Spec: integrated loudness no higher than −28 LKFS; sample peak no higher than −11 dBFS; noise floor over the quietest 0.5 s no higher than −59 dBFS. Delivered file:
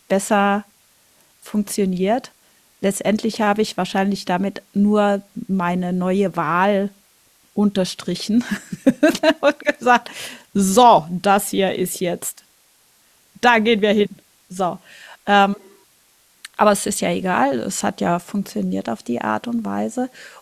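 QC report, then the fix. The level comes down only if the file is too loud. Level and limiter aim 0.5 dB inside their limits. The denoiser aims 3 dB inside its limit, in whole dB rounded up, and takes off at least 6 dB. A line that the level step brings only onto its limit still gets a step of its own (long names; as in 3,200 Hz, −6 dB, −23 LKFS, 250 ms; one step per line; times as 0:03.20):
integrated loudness −19.0 LKFS: out of spec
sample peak −2.0 dBFS: out of spec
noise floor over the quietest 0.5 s −57 dBFS: out of spec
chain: level −9.5 dB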